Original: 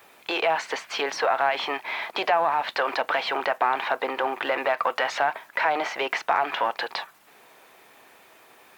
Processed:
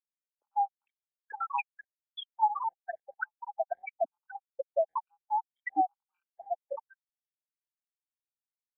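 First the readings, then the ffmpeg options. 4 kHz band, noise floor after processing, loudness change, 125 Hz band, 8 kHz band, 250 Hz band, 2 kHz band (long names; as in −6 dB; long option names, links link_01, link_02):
−19.5 dB, below −85 dBFS, −9.0 dB, can't be measured, below −35 dB, −11.5 dB, −17.0 dB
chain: -filter_complex "[0:a]afftfilt=real='re*pow(10,11/40*sin(2*PI*(0.97*log(max(b,1)*sr/1024/100)/log(2)-(-2.7)*(pts-256)/sr)))':imag='im*pow(10,11/40*sin(2*PI*(0.97*log(max(b,1)*sr/1024/100)/log(2)-(-2.7)*(pts-256)/sr)))':win_size=1024:overlap=0.75,asubboost=boost=7:cutoff=210,asplit=2[link_01][link_02];[link_02]asoftclip=type=tanh:threshold=-21.5dB,volume=-11dB[link_03];[link_01][link_03]amix=inputs=2:normalize=0,lowpass=5400,acrossover=split=360|1700[link_04][link_05][link_06];[link_05]adelay=100[link_07];[link_06]adelay=590[link_08];[link_04][link_07][link_08]amix=inputs=3:normalize=0,afftfilt=real='re*gte(hypot(re,im),0.398)':imag='im*gte(hypot(re,im),0.398)':win_size=1024:overlap=0.75,acrossover=split=260|2100[link_09][link_10][link_11];[link_09]acompressor=threshold=-58dB:ratio=6[link_12];[link_10]adynamicequalizer=threshold=0.00794:dfrequency=510:dqfactor=3.7:tfrequency=510:tqfactor=3.7:attack=5:release=100:ratio=0.375:range=1.5:mode=boostabove:tftype=bell[link_13];[link_12][link_13][link_11]amix=inputs=3:normalize=0,afftfilt=real='re*gt(sin(2*PI*1.1*pts/sr)*(1-2*mod(floor(b*sr/1024/780),2)),0)':imag='im*gt(sin(2*PI*1.1*pts/sr)*(1-2*mod(floor(b*sr/1024/780),2)),0)':win_size=1024:overlap=0.75,volume=-1.5dB"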